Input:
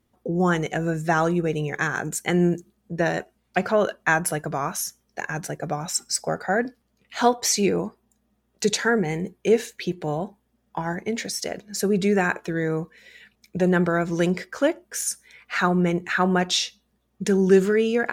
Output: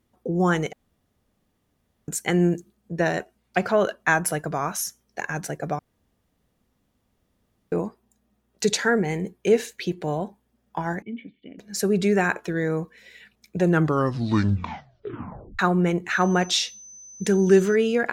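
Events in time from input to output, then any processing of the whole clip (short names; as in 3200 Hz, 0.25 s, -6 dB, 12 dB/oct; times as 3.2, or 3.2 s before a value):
0.73–2.08 room tone
5.79–7.72 room tone
11.02–11.59 vocal tract filter i
13.61 tape stop 1.98 s
16.1–17.74 whine 6100 Hz -42 dBFS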